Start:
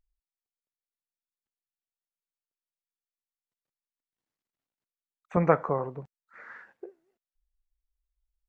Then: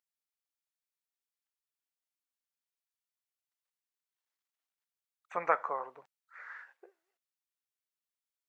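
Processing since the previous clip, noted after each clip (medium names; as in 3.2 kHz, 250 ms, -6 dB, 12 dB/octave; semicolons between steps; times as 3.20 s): high-pass 940 Hz 12 dB/octave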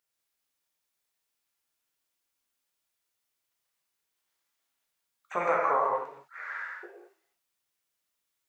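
peak limiter -23 dBFS, peak gain reduction 11.5 dB; gated-style reverb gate 240 ms flat, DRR -3 dB; trim +6.5 dB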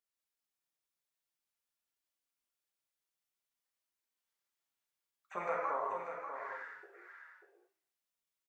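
flange 0.51 Hz, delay 2.8 ms, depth 4.3 ms, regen -42%; delay 590 ms -8 dB; trim -6 dB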